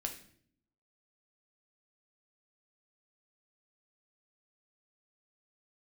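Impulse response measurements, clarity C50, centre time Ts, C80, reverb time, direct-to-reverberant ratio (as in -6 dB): 9.5 dB, 14 ms, 13.5 dB, 0.60 s, 3.0 dB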